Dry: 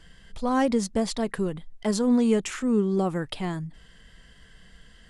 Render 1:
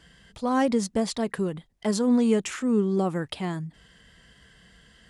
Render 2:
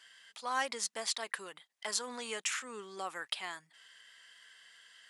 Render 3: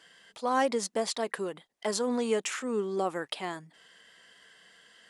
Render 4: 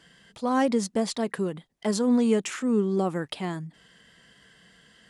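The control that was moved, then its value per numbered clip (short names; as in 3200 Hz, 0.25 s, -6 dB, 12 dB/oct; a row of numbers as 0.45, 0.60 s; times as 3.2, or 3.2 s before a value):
HPF, cutoff: 63, 1300, 450, 160 Hz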